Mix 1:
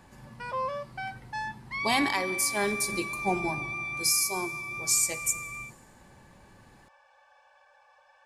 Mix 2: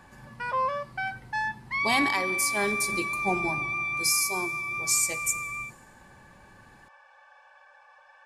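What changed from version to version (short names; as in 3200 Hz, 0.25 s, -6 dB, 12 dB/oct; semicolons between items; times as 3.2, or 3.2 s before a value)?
background: add bell 1500 Hz +7.5 dB 1.6 oct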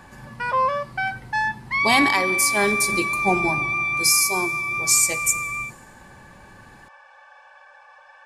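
speech +7.0 dB; background +6.5 dB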